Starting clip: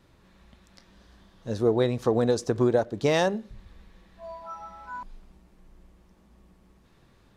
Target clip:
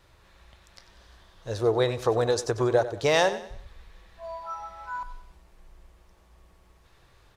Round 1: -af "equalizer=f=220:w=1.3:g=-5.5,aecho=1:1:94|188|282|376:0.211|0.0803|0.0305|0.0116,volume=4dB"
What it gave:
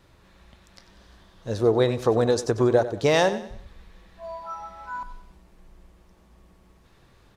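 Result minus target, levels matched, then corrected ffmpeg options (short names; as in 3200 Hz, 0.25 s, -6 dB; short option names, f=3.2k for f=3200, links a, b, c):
250 Hz band +3.5 dB
-af "equalizer=f=220:w=1.3:g=-17,aecho=1:1:94|188|282|376:0.211|0.0803|0.0305|0.0116,volume=4dB"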